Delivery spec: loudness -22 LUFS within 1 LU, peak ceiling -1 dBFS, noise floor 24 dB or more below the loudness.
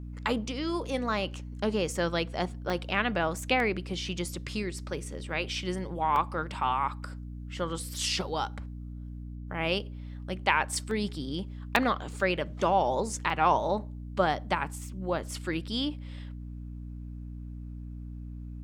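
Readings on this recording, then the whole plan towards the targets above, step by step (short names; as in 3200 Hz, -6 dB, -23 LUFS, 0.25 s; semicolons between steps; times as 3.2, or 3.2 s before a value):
dropouts 7; longest dropout 1.3 ms; hum 60 Hz; harmonics up to 300 Hz; hum level -37 dBFS; loudness -30.5 LUFS; peak -6.0 dBFS; loudness target -22.0 LUFS
-> interpolate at 2.7/3.6/4.29/6.16/10.91/11.76/13.3, 1.3 ms; de-hum 60 Hz, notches 5; gain +8.5 dB; limiter -1 dBFS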